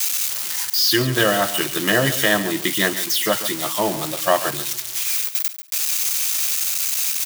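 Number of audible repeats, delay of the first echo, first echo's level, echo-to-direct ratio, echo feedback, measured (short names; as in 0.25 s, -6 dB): 2, 0.14 s, -13.0 dB, -13.0 dB, 20%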